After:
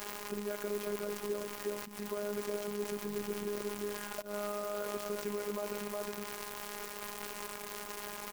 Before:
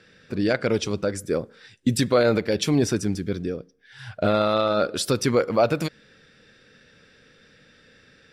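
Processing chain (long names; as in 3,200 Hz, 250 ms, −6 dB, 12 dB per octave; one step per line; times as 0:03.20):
single-tap delay 363 ms −9 dB
downward compressor 6 to 1, threshold −31 dBFS, peak gain reduction 16 dB
bit-depth reduction 6 bits, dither triangular
output level in coarse steps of 14 dB
high-shelf EQ 9,200 Hz −6.5 dB
volume swells 124 ms
graphic EQ with 15 bands 400 Hz +9 dB, 1,000 Hz +7 dB, 4,000 Hz −5 dB
phases set to zero 206 Hz
notch filter 3,600 Hz, Q 7.1
converter with an unsteady clock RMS 0.043 ms
level +4 dB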